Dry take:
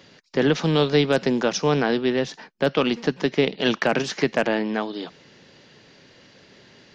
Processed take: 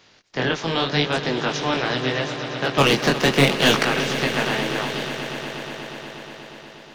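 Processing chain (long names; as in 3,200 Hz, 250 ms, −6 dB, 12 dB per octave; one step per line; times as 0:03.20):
ceiling on every frequency bin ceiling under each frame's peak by 14 dB
0:02.78–0:03.83: leveller curve on the samples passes 3
chorus effect 0.8 Hz, delay 19 ms, depth 5.3 ms
on a send: echo that builds up and dies away 120 ms, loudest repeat 5, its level −14.5 dB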